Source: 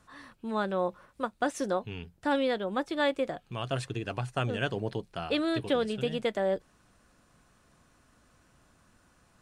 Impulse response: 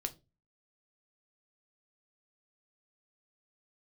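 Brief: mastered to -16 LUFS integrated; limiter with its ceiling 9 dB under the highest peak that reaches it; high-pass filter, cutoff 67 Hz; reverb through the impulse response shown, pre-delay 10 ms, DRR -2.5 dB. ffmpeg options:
-filter_complex "[0:a]highpass=67,alimiter=limit=-24dB:level=0:latency=1,asplit=2[a][b];[1:a]atrim=start_sample=2205,adelay=10[c];[b][c]afir=irnorm=-1:irlink=0,volume=3dB[d];[a][d]amix=inputs=2:normalize=0,volume=14.5dB"

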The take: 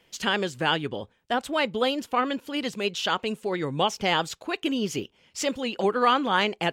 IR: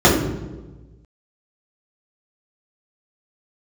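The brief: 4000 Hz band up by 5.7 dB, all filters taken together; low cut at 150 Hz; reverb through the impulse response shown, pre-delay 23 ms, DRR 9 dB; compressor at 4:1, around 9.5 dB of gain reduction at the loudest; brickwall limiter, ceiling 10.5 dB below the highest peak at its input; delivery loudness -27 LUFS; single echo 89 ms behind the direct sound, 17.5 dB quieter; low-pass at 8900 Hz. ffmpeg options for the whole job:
-filter_complex "[0:a]highpass=150,lowpass=8.9k,equalizer=f=4k:t=o:g=8.5,acompressor=threshold=-27dB:ratio=4,alimiter=limit=-23.5dB:level=0:latency=1,aecho=1:1:89:0.133,asplit=2[a][b];[1:a]atrim=start_sample=2205,adelay=23[c];[b][c]afir=irnorm=-1:irlink=0,volume=-35.5dB[d];[a][d]amix=inputs=2:normalize=0,volume=6dB"

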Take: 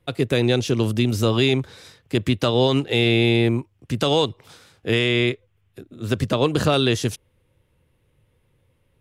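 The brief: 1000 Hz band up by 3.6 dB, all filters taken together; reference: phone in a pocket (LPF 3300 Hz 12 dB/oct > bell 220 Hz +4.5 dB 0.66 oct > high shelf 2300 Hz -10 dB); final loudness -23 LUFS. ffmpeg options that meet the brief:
-af "lowpass=3.3k,equalizer=f=220:t=o:w=0.66:g=4.5,equalizer=f=1k:t=o:g=6.5,highshelf=f=2.3k:g=-10,volume=-3dB"

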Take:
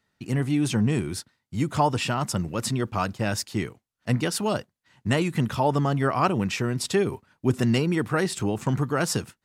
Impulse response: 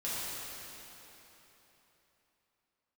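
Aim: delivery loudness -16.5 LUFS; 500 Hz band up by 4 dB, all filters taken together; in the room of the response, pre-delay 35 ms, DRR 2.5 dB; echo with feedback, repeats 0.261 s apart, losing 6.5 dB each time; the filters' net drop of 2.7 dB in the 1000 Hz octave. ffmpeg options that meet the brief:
-filter_complex "[0:a]equalizer=f=500:t=o:g=6.5,equalizer=f=1k:t=o:g=-6,aecho=1:1:261|522|783|1044|1305|1566:0.473|0.222|0.105|0.0491|0.0231|0.0109,asplit=2[a][b];[1:a]atrim=start_sample=2205,adelay=35[c];[b][c]afir=irnorm=-1:irlink=0,volume=-8dB[d];[a][d]amix=inputs=2:normalize=0,volume=5dB"

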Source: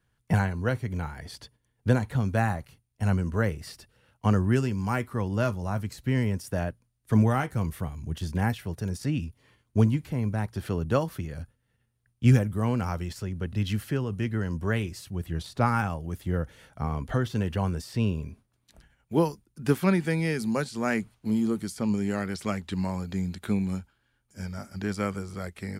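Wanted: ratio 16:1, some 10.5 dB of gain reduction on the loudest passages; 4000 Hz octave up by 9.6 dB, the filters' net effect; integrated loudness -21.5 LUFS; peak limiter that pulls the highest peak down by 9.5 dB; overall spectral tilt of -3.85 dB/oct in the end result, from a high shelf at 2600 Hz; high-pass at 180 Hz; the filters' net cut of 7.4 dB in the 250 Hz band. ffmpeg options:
-af "highpass=180,equalizer=f=250:t=o:g=-7.5,highshelf=f=2.6k:g=7.5,equalizer=f=4k:t=o:g=6,acompressor=threshold=-31dB:ratio=16,volume=17.5dB,alimiter=limit=-9.5dB:level=0:latency=1"

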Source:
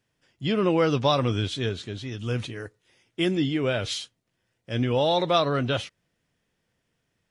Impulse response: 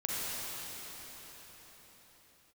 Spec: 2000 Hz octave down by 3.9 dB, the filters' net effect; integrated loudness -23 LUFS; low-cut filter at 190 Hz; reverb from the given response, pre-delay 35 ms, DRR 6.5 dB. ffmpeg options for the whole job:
-filter_complex "[0:a]highpass=190,equalizer=f=2k:t=o:g=-5.5,asplit=2[a][b];[1:a]atrim=start_sample=2205,adelay=35[c];[b][c]afir=irnorm=-1:irlink=0,volume=-13.5dB[d];[a][d]amix=inputs=2:normalize=0,volume=4dB"

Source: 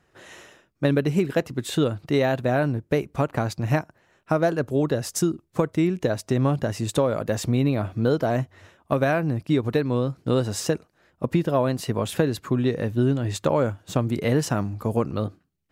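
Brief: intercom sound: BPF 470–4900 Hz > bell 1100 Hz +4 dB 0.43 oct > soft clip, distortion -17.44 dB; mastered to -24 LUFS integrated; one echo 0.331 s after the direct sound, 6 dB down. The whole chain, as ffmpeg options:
-af "highpass=470,lowpass=4.9k,equalizer=f=1.1k:t=o:w=0.43:g=4,aecho=1:1:331:0.501,asoftclip=threshold=-16dB,volume=5.5dB"

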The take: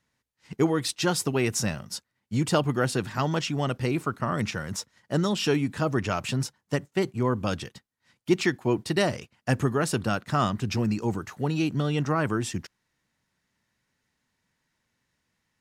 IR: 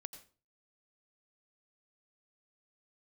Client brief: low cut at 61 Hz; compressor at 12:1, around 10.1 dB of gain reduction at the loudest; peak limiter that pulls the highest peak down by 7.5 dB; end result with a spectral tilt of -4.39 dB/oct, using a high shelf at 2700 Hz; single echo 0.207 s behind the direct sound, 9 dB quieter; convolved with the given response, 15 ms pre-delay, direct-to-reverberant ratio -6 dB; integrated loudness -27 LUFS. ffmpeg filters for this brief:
-filter_complex "[0:a]highpass=61,highshelf=f=2.7k:g=5,acompressor=threshold=-27dB:ratio=12,alimiter=limit=-21dB:level=0:latency=1,aecho=1:1:207:0.355,asplit=2[a][b];[1:a]atrim=start_sample=2205,adelay=15[c];[b][c]afir=irnorm=-1:irlink=0,volume=10.5dB[d];[a][d]amix=inputs=2:normalize=0,volume=-1dB"

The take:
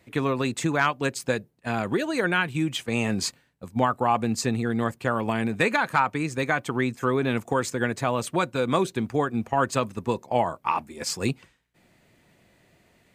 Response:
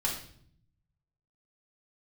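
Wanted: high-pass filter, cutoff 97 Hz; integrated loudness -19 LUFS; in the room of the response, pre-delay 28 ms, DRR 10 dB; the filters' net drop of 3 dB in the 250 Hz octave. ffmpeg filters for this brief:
-filter_complex "[0:a]highpass=97,equalizer=f=250:t=o:g=-3.5,asplit=2[a][b];[1:a]atrim=start_sample=2205,adelay=28[c];[b][c]afir=irnorm=-1:irlink=0,volume=-16dB[d];[a][d]amix=inputs=2:normalize=0,volume=7.5dB"

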